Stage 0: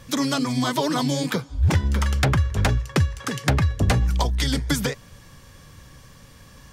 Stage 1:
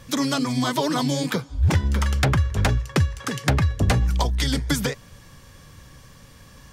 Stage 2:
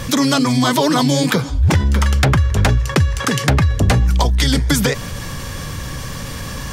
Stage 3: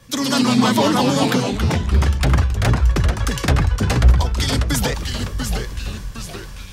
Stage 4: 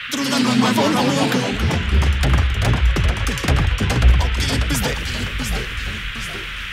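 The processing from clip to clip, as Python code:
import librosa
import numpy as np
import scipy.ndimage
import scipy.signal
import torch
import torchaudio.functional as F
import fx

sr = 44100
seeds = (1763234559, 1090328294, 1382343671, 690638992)

y1 = x
y2 = fx.env_flatten(y1, sr, amount_pct=50)
y2 = y2 * librosa.db_to_amplitude(4.0)
y3 = fx.echo_pitch(y2, sr, ms=114, semitones=-2, count=3, db_per_echo=-3.0)
y3 = fx.band_widen(y3, sr, depth_pct=100)
y3 = y3 * librosa.db_to_amplitude(-5.0)
y4 = fx.dmg_noise_band(y3, sr, seeds[0], low_hz=1300.0, high_hz=3300.0, level_db=-29.0)
y4 = fx.echo_feedback(y4, sr, ms=115, feedback_pct=52, wet_db=-20.0)
y4 = y4 * librosa.db_to_amplitude(-1.0)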